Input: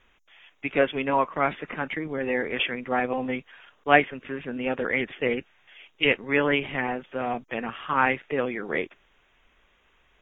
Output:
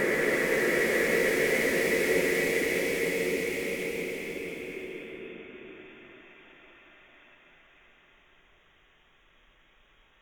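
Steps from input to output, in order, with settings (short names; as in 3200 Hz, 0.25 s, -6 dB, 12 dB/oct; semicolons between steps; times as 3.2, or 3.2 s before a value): reverse echo 52 ms -6.5 dB; wrapped overs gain 12 dB; Paulstretch 29×, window 0.25 s, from 8.72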